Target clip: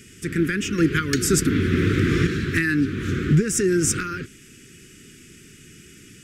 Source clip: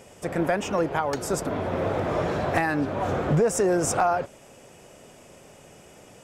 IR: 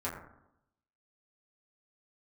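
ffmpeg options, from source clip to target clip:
-filter_complex "[0:a]asettb=1/sr,asplit=3[link_01][link_02][link_03];[link_01]atrim=end=0.784[link_04];[link_02]atrim=start=0.78:end=2.27,asetpts=PTS-STARTPTS,afade=type=in:duration=0.004:curve=qsin,afade=type=out:start_time=1.486:duration=0.004:curve=qsin,acontrast=34[link_05];[link_03]atrim=start=2.266[link_06];[link_04][link_05]acrossfade=duration=0.004:curve1=hsin:curve2=qsin[link_07];[link_07][link_06]acrossfade=duration=0.004:curve1=qsin:curve2=hsin,asuperstop=centerf=740:order=8:qfactor=0.67,volume=6dB"

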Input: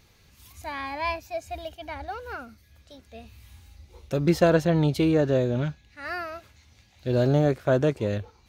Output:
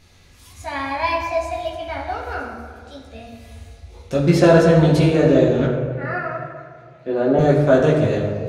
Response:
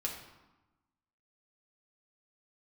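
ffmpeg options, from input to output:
-filter_complex "[0:a]asettb=1/sr,asplit=3[link_01][link_02][link_03];[link_01]atrim=end=5.654[link_04];[link_02]atrim=start=5.65:end=7.39,asetpts=PTS-STARTPTS,afade=type=in:duration=0.004:curve=qsin,afade=type=out:start_time=1.736:duration=0.004:curve=qsin,acrossover=split=190 2200:gain=0.0891 1 0.112[link_05][link_06][link_07];[link_05][link_06][link_07]amix=inputs=3:normalize=0[link_08];[link_03]atrim=start=7.386[link_09];[link_04][link_08]acrossfade=duration=0.004:curve1=hsin:curve2=qsin[link_10];[link_10][link_09]acrossfade=duration=0.004:curve1=qsin:curve2=hsin[link_11];[1:a]atrim=start_sample=2205,asetrate=22491,aresample=44100[link_12];[link_11][link_12]afir=irnorm=-1:irlink=0,volume=1.5dB"

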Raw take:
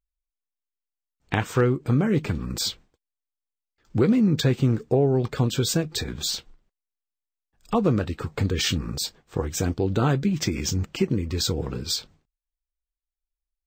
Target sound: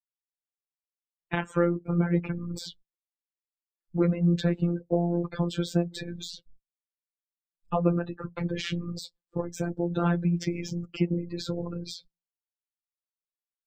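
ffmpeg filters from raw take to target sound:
ffmpeg -i in.wav -filter_complex "[0:a]afftdn=noise_reduction=35:noise_floor=-36,acrossover=split=160|2800[link_01][link_02][link_03];[link_03]acompressor=threshold=-38dB:ratio=12[link_04];[link_01][link_02][link_04]amix=inputs=3:normalize=0,afftfilt=real='hypot(re,im)*cos(PI*b)':imag='0':win_size=1024:overlap=0.75" out.wav

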